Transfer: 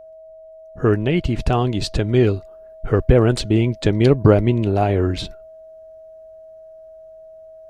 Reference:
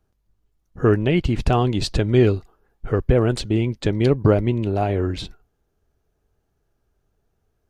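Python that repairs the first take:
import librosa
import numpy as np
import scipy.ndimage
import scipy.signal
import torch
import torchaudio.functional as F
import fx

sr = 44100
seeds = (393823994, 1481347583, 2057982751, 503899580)

y = fx.notch(x, sr, hz=640.0, q=30.0)
y = fx.fix_level(y, sr, at_s=2.51, step_db=-3.5)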